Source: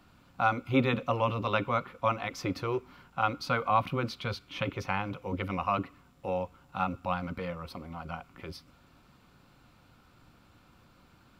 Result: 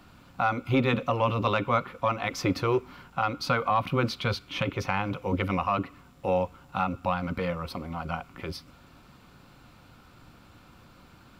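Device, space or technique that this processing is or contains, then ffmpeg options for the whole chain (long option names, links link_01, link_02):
soft clipper into limiter: -af "asoftclip=type=tanh:threshold=-12.5dB,alimiter=limit=-20.5dB:level=0:latency=1:release=250,volume=6.5dB"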